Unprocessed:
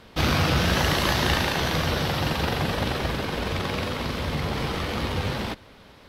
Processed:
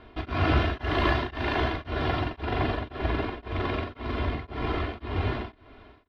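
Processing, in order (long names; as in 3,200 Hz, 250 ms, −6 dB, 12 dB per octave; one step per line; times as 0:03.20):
high-frequency loss of the air 380 metres
comb filter 2.9 ms, depth 82%
tremolo along a rectified sine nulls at 1.9 Hz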